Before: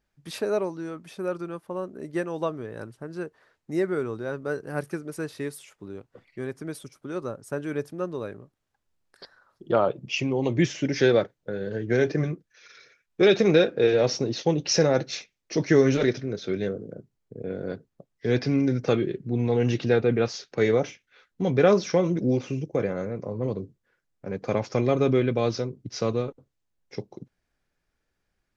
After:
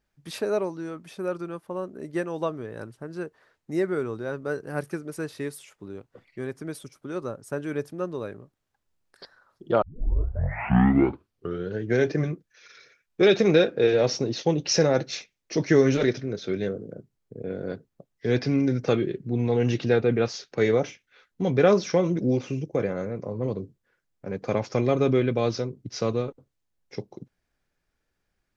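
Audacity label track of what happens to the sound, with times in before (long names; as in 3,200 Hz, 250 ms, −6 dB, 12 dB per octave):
9.820000	9.820000	tape start 1.99 s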